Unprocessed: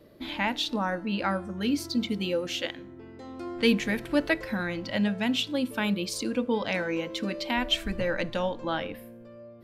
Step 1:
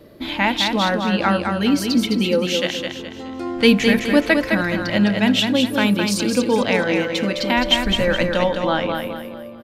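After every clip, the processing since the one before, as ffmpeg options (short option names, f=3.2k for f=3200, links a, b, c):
-af "aecho=1:1:210|420|630|840|1050:0.562|0.214|0.0812|0.0309|0.0117,volume=9dB"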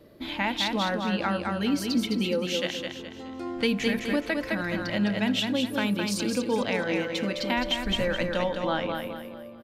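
-af "alimiter=limit=-8dB:level=0:latency=1:release=198,volume=-7.5dB"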